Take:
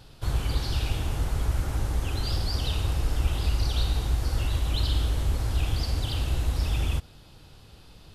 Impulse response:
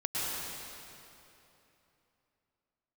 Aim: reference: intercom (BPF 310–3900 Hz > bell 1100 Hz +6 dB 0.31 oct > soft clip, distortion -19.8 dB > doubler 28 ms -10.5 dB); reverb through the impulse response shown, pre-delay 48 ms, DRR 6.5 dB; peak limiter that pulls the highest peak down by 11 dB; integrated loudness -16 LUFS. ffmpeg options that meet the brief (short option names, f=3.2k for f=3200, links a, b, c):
-filter_complex "[0:a]alimiter=limit=-23.5dB:level=0:latency=1,asplit=2[a][b];[1:a]atrim=start_sample=2205,adelay=48[c];[b][c]afir=irnorm=-1:irlink=0,volume=-14dB[d];[a][d]amix=inputs=2:normalize=0,highpass=310,lowpass=3.9k,equalizer=f=1.1k:t=o:w=0.31:g=6,asoftclip=threshold=-33.5dB,asplit=2[e][f];[f]adelay=28,volume=-10.5dB[g];[e][g]amix=inputs=2:normalize=0,volume=25.5dB"